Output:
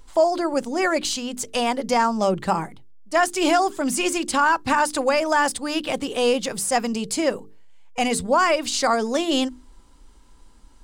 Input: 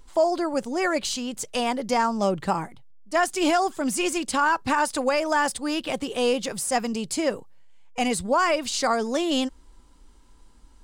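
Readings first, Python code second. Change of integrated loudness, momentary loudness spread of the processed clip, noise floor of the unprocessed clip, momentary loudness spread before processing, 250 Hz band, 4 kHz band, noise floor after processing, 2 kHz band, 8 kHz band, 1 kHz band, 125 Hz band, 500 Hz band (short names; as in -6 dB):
+3.0 dB, 7 LU, -52 dBFS, 6 LU, +2.0 dB, +3.0 dB, -50 dBFS, +3.0 dB, +3.0 dB, +3.0 dB, +2.0 dB, +3.0 dB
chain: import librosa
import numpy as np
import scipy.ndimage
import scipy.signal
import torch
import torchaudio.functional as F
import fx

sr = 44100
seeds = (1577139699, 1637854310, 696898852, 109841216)

y = fx.hum_notches(x, sr, base_hz=50, count=9)
y = y * librosa.db_to_amplitude(3.0)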